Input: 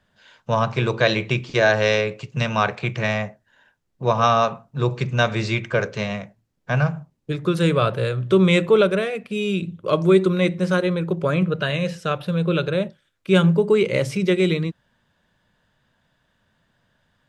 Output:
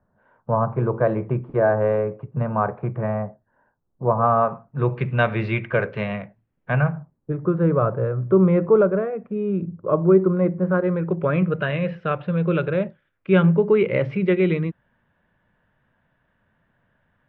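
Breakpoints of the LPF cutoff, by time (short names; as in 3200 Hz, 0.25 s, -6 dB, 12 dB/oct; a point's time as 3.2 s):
LPF 24 dB/oct
4.22 s 1200 Hz
5.06 s 2600 Hz
6.71 s 2600 Hz
7.32 s 1300 Hz
10.63 s 1300 Hz
11.24 s 2400 Hz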